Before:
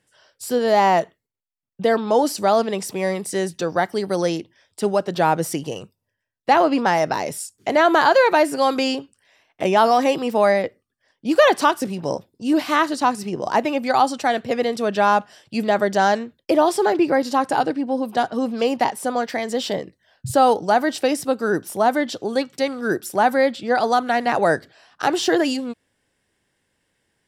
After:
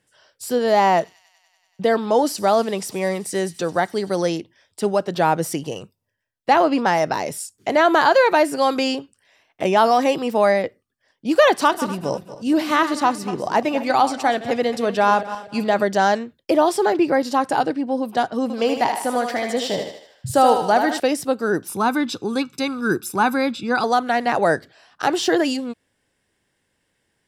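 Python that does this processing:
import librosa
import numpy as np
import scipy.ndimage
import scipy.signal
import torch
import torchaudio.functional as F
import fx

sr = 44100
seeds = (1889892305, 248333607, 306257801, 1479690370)

y = fx.echo_wet_highpass(x, sr, ms=96, feedback_pct=80, hz=4000.0, wet_db=-16.5, at=(0.86, 4.3))
y = fx.reverse_delay_fb(y, sr, ms=120, feedback_pct=52, wet_db=-12.0, at=(11.51, 15.83))
y = fx.echo_thinned(y, sr, ms=77, feedback_pct=53, hz=410.0, wet_db=-5.0, at=(18.42, 21.0))
y = fx.comb(y, sr, ms=0.8, depth=0.77, at=(21.68, 23.84))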